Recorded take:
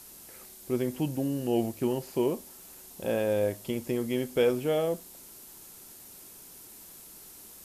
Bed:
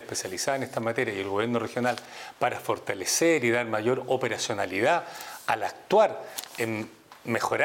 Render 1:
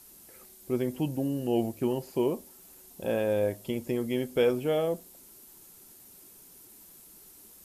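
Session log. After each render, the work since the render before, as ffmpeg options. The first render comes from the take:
ffmpeg -i in.wav -af "afftdn=noise_reduction=6:noise_floor=-50" out.wav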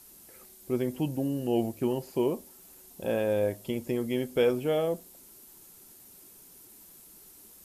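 ffmpeg -i in.wav -af anull out.wav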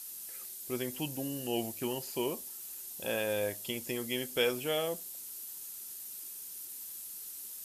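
ffmpeg -i in.wav -af "tiltshelf=frequency=1300:gain=-9,bandreject=frequency=2200:width=25" out.wav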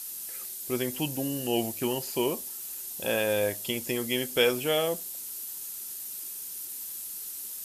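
ffmpeg -i in.wav -af "volume=6dB" out.wav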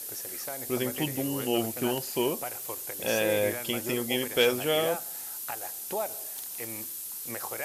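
ffmpeg -i in.wav -i bed.wav -filter_complex "[1:a]volume=-12.5dB[link_01];[0:a][link_01]amix=inputs=2:normalize=0" out.wav

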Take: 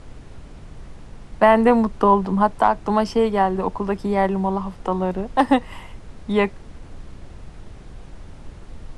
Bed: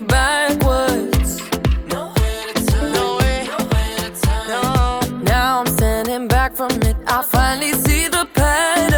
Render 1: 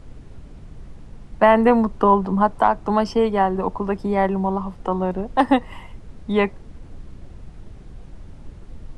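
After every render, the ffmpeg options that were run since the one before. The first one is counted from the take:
ffmpeg -i in.wav -af "afftdn=noise_reduction=6:noise_floor=-42" out.wav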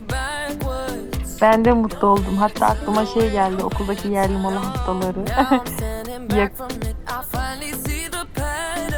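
ffmpeg -i in.wav -i bed.wav -filter_complex "[1:a]volume=-10dB[link_01];[0:a][link_01]amix=inputs=2:normalize=0" out.wav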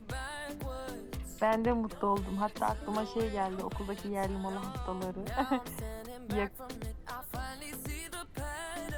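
ffmpeg -i in.wav -af "volume=-15dB" out.wav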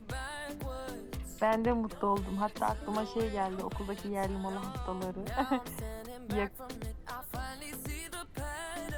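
ffmpeg -i in.wav -af anull out.wav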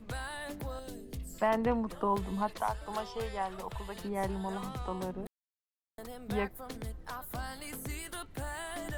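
ffmpeg -i in.wav -filter_complex "[0:a]asettb=1/sr,asplit=3[link_01][link_02][link_03];[link_01]atrim=end=0.794[link_04];[link_02]atrim=start=0.79:end=1.34,asetpts=PTS-STARTPTS,afade=type=in:duration=0.004:curve=qsin,afade=type=out:start_time=0.546:duration=0.004:curve=qsin,equalizer=frequency=1200:width_type=o:width=1.7:gain=-13[link_05];[link_03]atrim=start=1.336[link_06];[link_04][link_05]acrossfade=duration=0.004:curve1=hsin:curve2=qsin[link_07];[link_07][link_06]acrossfade=duration=0.004:curve1=qsin:curve2=hsin,asettb=1/sr,asplit=3[link_08][link_09][link_10];[link_08]atrim=end=2.564[link_11];[link_09]atrim=start=2.56:end=3.96,asetpts=PTS-STARTPTS,afade=type=in:duration=0.004:curve=qsin,afade=type=out:start_time=1.396:duration=0.004:curve=qsin,equalizer=frequency=260:width_type=o:width=1:gain=-14.5[link_12];[link_10]atrim=start=3.956[link_13];[link_11][link_12]acrossfade=duration=0.004:curve1=hsin:curve2=qsin[link_14];[link_14][link_13]acrossfade=duration=0.004:curve1=qsin:curve2=hsin,asplit=3[link_15][link_16][link_17];[link_15]atrim=end=5.27,asetpts=PTS-STARTPTS,afade=type=out:start_time=5.266:duration=0.004:curve=hsin[link_18];[link_16]atrim=start=5.27:end=5.98,asetpts=PTS-STARTPTS,volume=0[link_19];[link_17]atrim=start=5.98,asetpts=PTS-STARTPTS,afade=type=in:duration=0.004:curve=hsin[link_20];[link_18][link_19][link_20]concat=n=3:v=0:a=1" out.wav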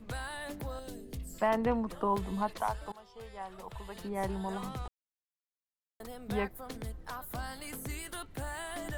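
ffmpeg -i in.wav -filter_complex "[0:a]asplit=4[link_01][link_02][link_03][link_04];[link_01]atrim=end=2.92,asetpts=PTS-STARTPTS,afade=type=out:start_time=2.916:duration=0.004:curve=hsin:silence=0.0944061[link_05];[link_02]atrim=start=2.92:end=4.88,asetpts=PTS-STARTPTS,afade=type=in:duration=1.4:silence=0.0944061,afade=type=out:start_time=1.956:duration=0.004:curve=hsin[link_06];[link_03]atrim=start=4.88:end=6,asetpts=PTS-STARTPTS,volume=0[link_07];[link_04]atrim=start=6,asetpts=PTS-STARTPTS,afade=type=in:duration=0.004:curve=hsin[link_08];[link_05][link_06][link_07][link_08]concat=n=4:v=0:a=1" out.wav

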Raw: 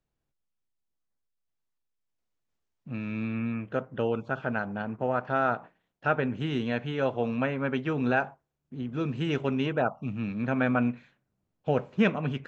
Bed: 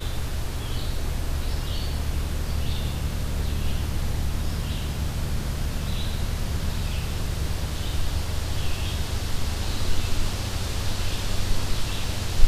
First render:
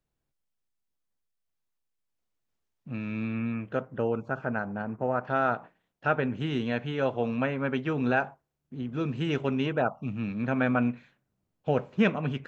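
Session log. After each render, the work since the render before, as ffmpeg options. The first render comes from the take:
ffmpeg -i in.wav -filter_complex "[0:a]asettb=1/sr,asplit=3[link_01][link_02][link_03];[link_01]atrim=end=3.974[link_04];[link_02]atrim=start=3.97:end=5.24,asetpts=PTS-STARTPTS,afade=type=in:duration=0.004:curve=qsin,afade=type=out:start_time=1.266:duration=0.004:curve=qsin,equalizer=frequency=3400:width=1.9:gain=-13[link_05];[link_03]atrim=start=5.236[link_06];[link_04][link_05]acrossfade=duration=0.004:curve1=hsin:curve2=qsin[link_07];[link_07][link_06]acrossfade=duration=0.004:curve1=qsin:curve2=hsin" out.wav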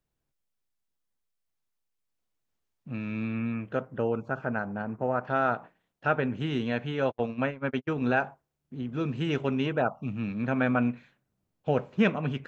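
ffmpeg -i in.wav -filter_complex "[0:a]asplit=3[link_01][link_02][link_03];[link_01]afade=type=out:start_time=7.06:duration=0.02[link_04];[link_02]agate=range=-48dB:threshold=-30dB:ratio=16:release=100:detection=peak,afade=type=in:start_time=7.06:duration=0.02,afade=type=out:start_time=8.1:duration=0.02[link_05];[link_03]afade=type=in:start_time=8.1:duration=0.02[link_06];[link_04][link_05][link_06]amix=inputs=3:normalize=0" out.wav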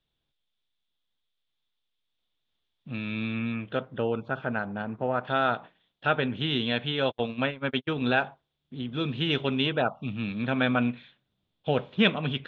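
ffmpeg -i in.wav -af "lowpass=frequency=3500:width_type=q:width=8" out.wav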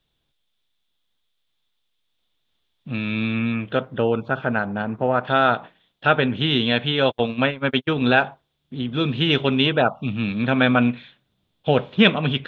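ffmpeg -i in.wav -af "volume=7.5dB,alimiter=limit=-1dB:level=0:latency=1" out.wav

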